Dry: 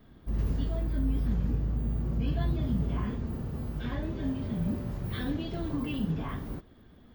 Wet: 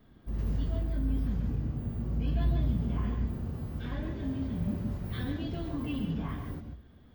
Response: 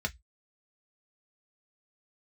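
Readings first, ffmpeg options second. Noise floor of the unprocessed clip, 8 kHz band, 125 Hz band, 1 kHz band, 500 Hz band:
-55 dBFS, no reading, -0.5 dB, -2.5 dB, -3.0 dB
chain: -filter_complex "[0:a]asplit=2[s0][s1];[1:a]atrim=start_sample=2205,asetrate=48510,aresample=44100,adelay=141[s2];[s1][s2]afir=irnorm=-1:irlink=0,volume=0.316[s3];[s0][s3]amix=inputs=2:normalize=0,volume=0.668"

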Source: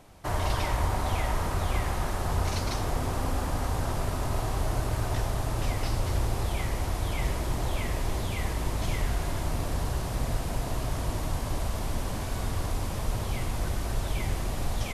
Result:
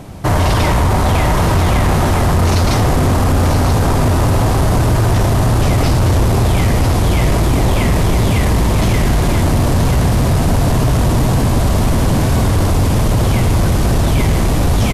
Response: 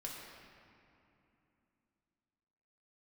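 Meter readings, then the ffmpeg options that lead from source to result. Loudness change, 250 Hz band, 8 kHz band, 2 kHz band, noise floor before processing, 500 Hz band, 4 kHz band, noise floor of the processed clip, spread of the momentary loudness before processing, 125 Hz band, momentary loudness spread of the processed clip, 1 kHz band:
+17.0 dB, +20.0 dB, +14.5 dB, +14.5 dB, -33 dBFS, +17.0 dB, +14.5 dB, -13 dBFS, 3 LU, +18.5 dB, 1 LU, +15.0 dB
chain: -filter_complex "[0:a]equalizer=f=150:w=0.45:g=11,asplit=2[s0][s1];[s1]aecho=0:1:980:0.447[s2];[s0][s2]amix=inputs=2:normalize=0,acontrast=86,apsyclip=6.68,volume=0.376"

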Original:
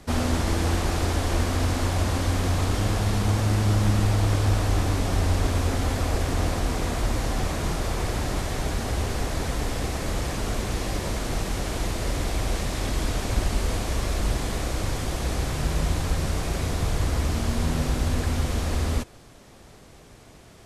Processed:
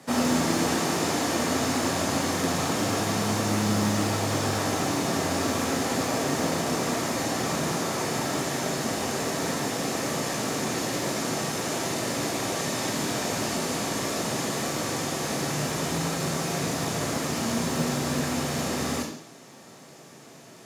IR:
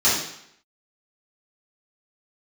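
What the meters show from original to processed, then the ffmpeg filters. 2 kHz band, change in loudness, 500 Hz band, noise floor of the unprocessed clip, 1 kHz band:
+2.5 dB, -0.5 dB, +2.5 dB, -49 dBFS, +3.0 dB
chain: -filter_complex "[0:a]highpass=f=140:w=0.5412,highpass=f=140:w=1.3066,acrusher=bits=8:mode=log:mix=0:aa=0.000001,asplit=2[s0][s1];[1:a]atrim=start_sample=2205,highshelf=f=7900:g=11.5[s2];[s1][s2]afir=irnorm=-1:irlink=0,volume=0.106[s3];[s0][s3]amix=inputs=2:normalize=0"

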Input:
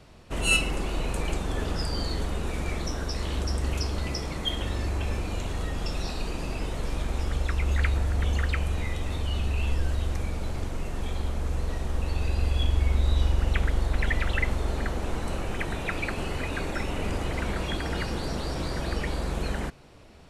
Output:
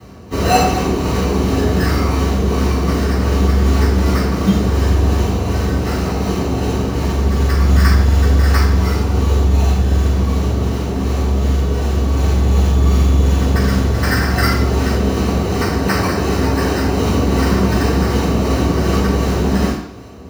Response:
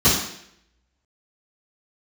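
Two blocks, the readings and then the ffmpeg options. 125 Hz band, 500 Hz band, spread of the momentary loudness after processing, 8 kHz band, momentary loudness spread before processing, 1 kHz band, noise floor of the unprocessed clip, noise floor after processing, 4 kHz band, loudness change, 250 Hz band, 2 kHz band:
+14.5 dB, +15.5 dB, 5 LU, +10.5 dB, 7 LU, +15.5 dB, -34 dBFS, -20 dBFS, +8.0 dB, +13.5 dB, +18.0 dB, +8.5 dB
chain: -filter_complex "[0:a]acrusher=samples=13:mix=1:aa=0.000001,acrossover=split=930[s0][s1];[s0]asoftclip=type=hard:threshold=0.0596[s2];[s1]tremolo=f=2.7:d=0.46[s3];[s2][s3]amix=inputs=2:normalize=0,lowshelf=f=140:g=-11.5[s4];[1:a]atrim=start_sample=2205[s5];[s4][s5]afir=irnorm=-1:irlink=0,volume=0.501"

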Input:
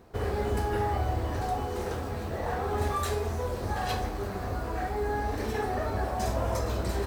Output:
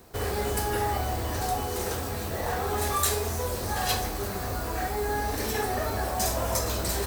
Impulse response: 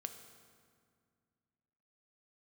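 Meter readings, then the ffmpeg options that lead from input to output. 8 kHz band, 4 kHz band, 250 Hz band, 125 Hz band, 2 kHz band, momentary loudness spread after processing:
+13.5 dB, +8.5 dB, 0.0 dB, -0.5 dB, +4.0 dB, 6 LU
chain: -filter_complex "[0:a]acrossover=split=400|1700|2900[s0][s1][s2][s3];[s0]asoftclip=type=hard:threshold=0.0316[s4];[s4][s1][s2][s3]amix=inputs=4:normalize=0,crystalizer=i=3.5:c=0,volume=1.12"

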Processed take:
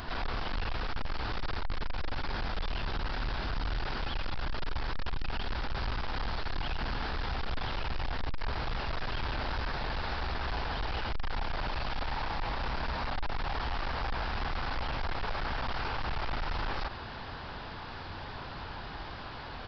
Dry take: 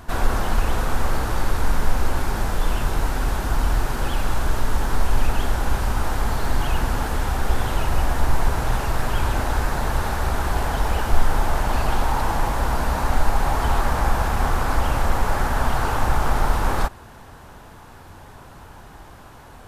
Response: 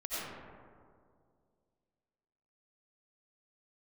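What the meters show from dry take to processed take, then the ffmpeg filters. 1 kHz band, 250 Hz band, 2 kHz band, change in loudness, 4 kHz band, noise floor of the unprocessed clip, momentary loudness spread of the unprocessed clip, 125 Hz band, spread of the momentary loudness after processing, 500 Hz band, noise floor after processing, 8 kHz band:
-12.0 dB, -13.0 dB, -8.0 dB, -12.0 dB, -4.5 dB, -43 dBFS, 11 LU, -13.5 dB, 7 LU, -12.5 dB, -42 dBFS, under -25 dB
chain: -af "aresample=11025,asoftclip=type=hard:threshold=0.1,aresample=44100,highshelf=f=2100:g=11,alimiter=level_in=1.5:limit=0.0631:level=0:latency=1:release=25,volume=0.668"

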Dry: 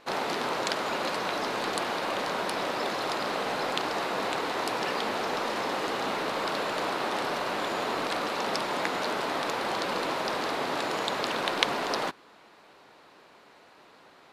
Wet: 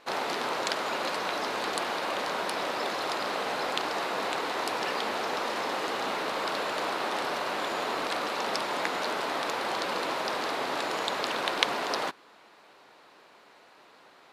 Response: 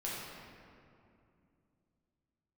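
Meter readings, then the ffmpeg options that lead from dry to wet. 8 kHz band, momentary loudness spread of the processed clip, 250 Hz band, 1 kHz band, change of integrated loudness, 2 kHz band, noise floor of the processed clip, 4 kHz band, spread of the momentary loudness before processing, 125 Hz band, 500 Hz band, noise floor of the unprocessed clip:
0.0 dB, 1 LU, -3.0 dB, -0.5 dB, -0.5 dB, 0.0 dB, -56 dBFS, 0.0 dB, 1 LU, -5.5 dB, -1.5 dB, -56 dBFS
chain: -af "lowshelf=f=230:g=-8"

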